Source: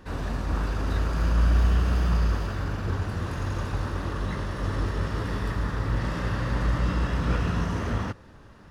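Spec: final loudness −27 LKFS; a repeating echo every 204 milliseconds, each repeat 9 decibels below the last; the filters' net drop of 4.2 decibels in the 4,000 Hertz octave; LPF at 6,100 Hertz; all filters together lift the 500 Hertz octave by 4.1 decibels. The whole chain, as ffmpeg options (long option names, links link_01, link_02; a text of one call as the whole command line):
ffmpeg -i in.wav -af "lowpass=6100,equalizer=frequency=500:width_type=o:gain=5,equalizer=frequency=4000:width_type=o:gain=-5,aecho=1:1:204|408|612|816:0.355|0.124|0.0435|0.0152" out.wav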